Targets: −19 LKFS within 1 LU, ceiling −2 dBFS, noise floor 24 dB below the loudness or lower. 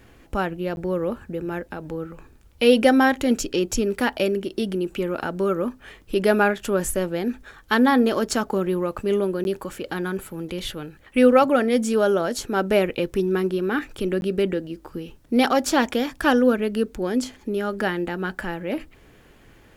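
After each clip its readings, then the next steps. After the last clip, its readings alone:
number of dropouts 3; longest dropout 11 ms; integrated loudness −23.0 LKFS; sample peak −4.5 dBFS; target loudness −19.0 LKFS
→ repair the gap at 0:00.76/0:09.44/0:14.21, 11 ms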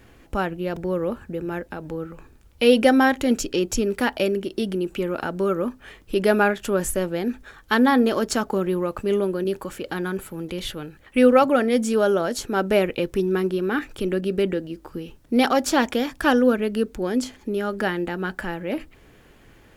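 number of dropouts 0; integrated loudness −23.0 LKFS; sample peak −4.5 dBFS; target loudness −19.0 LKFS
→ level +4 dB
brickwall limiter −2 dBFS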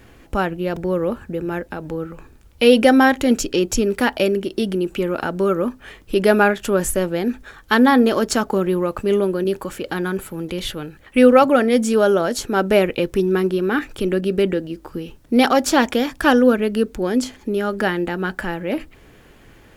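integrated loudness −19.0 LKFS; sample peak −2.0 dBFS; background noise floor −48 dBFS

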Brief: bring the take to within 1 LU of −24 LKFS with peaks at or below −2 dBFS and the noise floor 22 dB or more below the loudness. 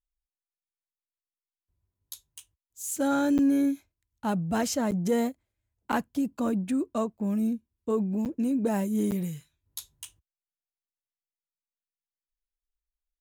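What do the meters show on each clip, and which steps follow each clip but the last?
number of dropouts 5; longest dropout 8.6 ms; integrated loudness −28.5 LKFS; sample peak −15.5 dBFS; target loudness −24.0 LKFS
→ repair the gap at 0:03.38/0:04.91/0:05.92/0:08.25/0:09.11, 8.6 ms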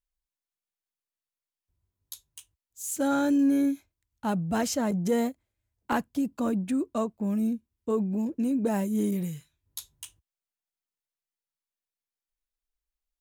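number of dropouts 0; integrated loudness −28.0 LKFS; sample peak −15.5 dBFS; target loudness −24.0 LKFS
→ level +4 dB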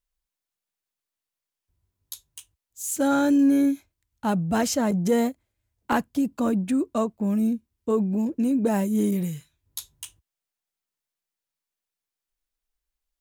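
integrated loudness −24.0 LKFS; sample peak −11.5 dBFS; background noise floor −88 dBFS

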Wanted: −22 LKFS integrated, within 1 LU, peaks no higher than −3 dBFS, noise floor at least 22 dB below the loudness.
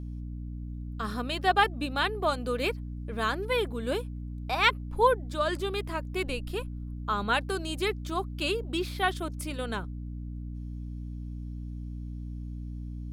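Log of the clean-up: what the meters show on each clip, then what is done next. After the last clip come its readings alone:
mains hum 60 Hz; hum harmonics up to 300 Hz; level of the hum −35 dBFS; integrated loudness −31.0 LKFS; sample peak −8.0 dBFS; target loudness −22.0 LKFS
→ mains-hum notches 60/120/180/240/300 Hz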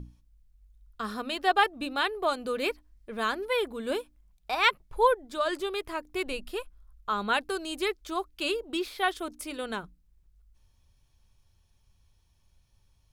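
mains hum none found; integrated loudness −30.0 LKFS; sample peak −8.0 dBFS; target loudness −22.0 LKFS
→ level +8 dB
brickwall limiter −3 dBFS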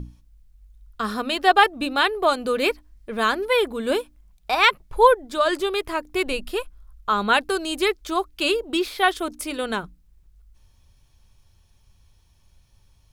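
integrated loudness −22.0 LKFS; sample peak −3.0 dBFS; background noise floor −59 dBFS

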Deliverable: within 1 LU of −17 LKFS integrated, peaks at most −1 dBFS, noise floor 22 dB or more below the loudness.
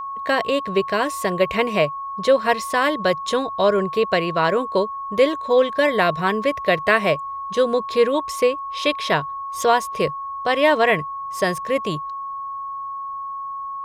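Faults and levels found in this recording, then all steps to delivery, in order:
interfering tone 1,100 Hz; level of the tone −27 dBFS; integrated loudness −21.0 LKFS; sample peak −2.5 dBFS; target loudness −17.0 LKFS
→ notch filter 1,100 Hz, Q 30
level +4 dB
brickwall limiter −1 dBFS

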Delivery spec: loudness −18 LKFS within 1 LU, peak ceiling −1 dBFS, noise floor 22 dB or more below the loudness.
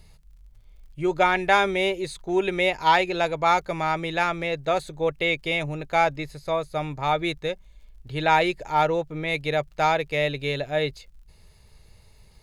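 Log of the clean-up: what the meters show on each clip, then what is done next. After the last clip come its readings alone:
crackle rate 37 per second; integrated loudness −24.0 LKFS; sample peak −6.0 dBFS; target loudness −18.0 LKFS
→ click removal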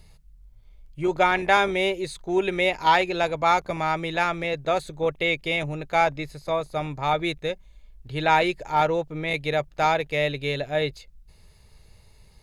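crackle rate 0.88 per second; integrated loudness −24.0 LKFS; sample peak −6.0 dBFS; target loudness −18.0 LKFS
→ level +6 dB
brickwall limiter −1 dBFS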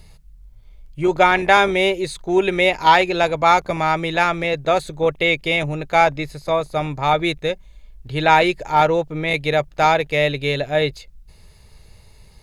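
integrated loudness −18.0 LKFS; sample peak −1.0 dBFS; background noise floor −48 dBFS

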